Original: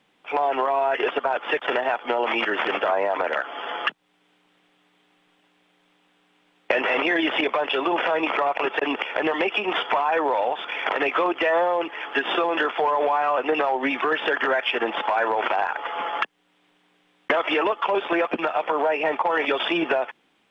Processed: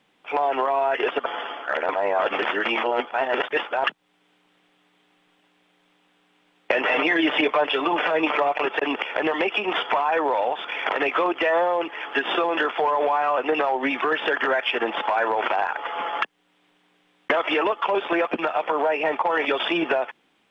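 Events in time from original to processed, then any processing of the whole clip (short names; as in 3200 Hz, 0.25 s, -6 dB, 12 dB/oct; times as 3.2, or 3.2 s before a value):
1.26–3.84 reverse
6.84–8.62 comb 6.7 ms, depth 53%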